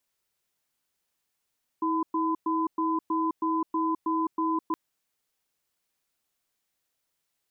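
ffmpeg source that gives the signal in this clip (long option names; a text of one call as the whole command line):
ffmpeg -f lavfi -i "aevalsrc='0.0473*(sin(2*PI*322*t)+sin(2*PI*1010*t))*clip(min(mod(t,0.32),0.21-mod(t,0.32))/0.005,0,1)':duration=2.92:sample_rate=44100" out.wav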